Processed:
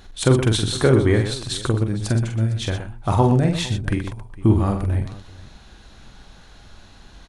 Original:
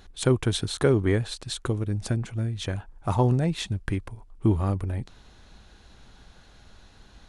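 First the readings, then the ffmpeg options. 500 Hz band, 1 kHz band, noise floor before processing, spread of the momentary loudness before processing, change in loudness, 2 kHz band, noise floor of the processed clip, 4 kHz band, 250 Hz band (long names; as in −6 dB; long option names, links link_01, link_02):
+5.5 dB, +6.5 dB, −53 dBFS, 10 LU, +6.0 dB, +6.5 dB, −46 dBFS, +6.5 dB, +6.5 dB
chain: -af "equalizer=frequency=450:width_type=o:width=0.3:gain=-2,aecho=1:1:45|121|457:0.531|0.335|0.106,volume=5dB"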